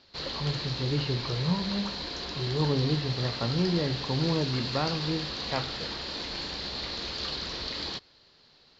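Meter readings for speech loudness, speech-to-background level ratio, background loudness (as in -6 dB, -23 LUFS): -31.0 LUFS, 2.5 dB, -33.5 LUFS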